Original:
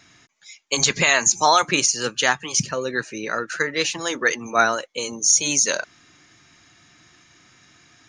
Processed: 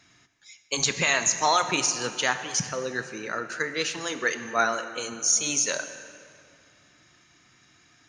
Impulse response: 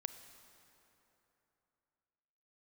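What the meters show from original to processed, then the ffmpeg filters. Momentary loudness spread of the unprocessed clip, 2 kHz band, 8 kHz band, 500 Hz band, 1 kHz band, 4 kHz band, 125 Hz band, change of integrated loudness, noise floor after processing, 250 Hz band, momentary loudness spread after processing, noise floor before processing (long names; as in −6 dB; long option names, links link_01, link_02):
11 LU, −5.5 dB, −5.5 dB, −5.5 dB, −5.5 dB, −5.5 dB, −5.5 dB, −5.5 dB, −60 dBFS, −5.5 dB, 11 LU, −55 dBFS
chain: -filter_complex "[1:a]atrim=start_sample=2205,asetrate=61740,aresample=44100[link_01];[0:a][link_01]afir=irnorm=-1:irlink=0"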